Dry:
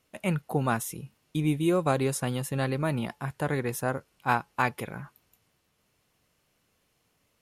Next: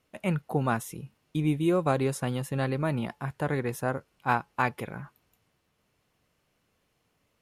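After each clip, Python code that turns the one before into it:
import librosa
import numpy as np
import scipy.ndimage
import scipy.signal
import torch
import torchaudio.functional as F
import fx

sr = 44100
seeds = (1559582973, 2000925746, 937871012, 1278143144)

y = fx.high_shelf(x, sr, hz=4000.0, db=-6.5)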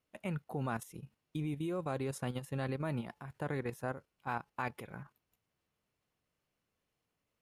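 y = fx.level_steps(x, sr, step_db=10)
y = y * 10.0 ** (-5.5 / 20.0)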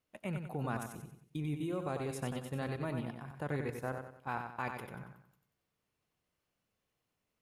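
y = fx.echo_feedback(x, sr, ms=93, feedback_pct=39, wet_db=-6.0)
y = y * 10.0 ** (-1.0 / 20.0)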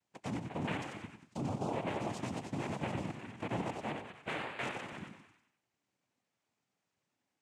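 y = fx.echo_stepped(x, sr, ms=100, hz=760.0, octaves=0.7, feedback_pct=70, wet_db=-6.5)
y = fx.noise_vocoder(y, sr, seeds[0], bands=4)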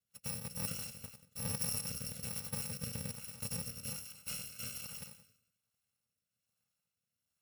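y = fx.bit_reversed(x, sr, seeds[1], block=128)
y = fx.rotary_switch(y, sr, hz=6.0, then_hz=1.2, switch_at_s=0.5)
y = y * 10.0 ** (1.0 / 20.0)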